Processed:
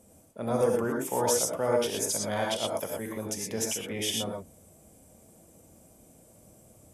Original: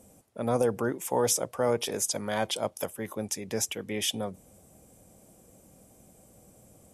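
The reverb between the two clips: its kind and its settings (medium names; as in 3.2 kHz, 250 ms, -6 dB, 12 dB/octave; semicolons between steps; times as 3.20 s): gated-style reverb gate 140 ms rising, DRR -0.5 dB; trim -3 dB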